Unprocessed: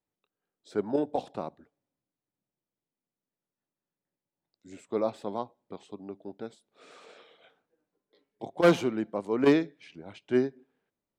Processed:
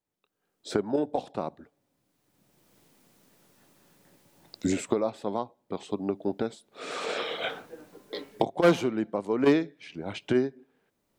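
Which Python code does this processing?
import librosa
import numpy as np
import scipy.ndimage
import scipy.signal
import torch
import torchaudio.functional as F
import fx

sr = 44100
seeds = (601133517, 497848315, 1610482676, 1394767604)

y = fx.recorder_agc(x, sr, target_db=-18.0, rise_db_per_s=20.0, max_gain_db=30)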